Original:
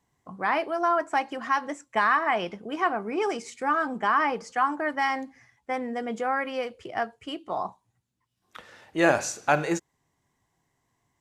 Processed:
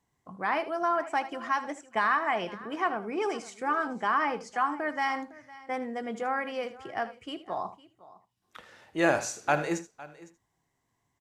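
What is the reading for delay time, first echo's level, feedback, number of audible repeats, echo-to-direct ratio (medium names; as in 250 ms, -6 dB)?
78 ms, -14.5 dB, no regular repeats, 3, -13.5 dB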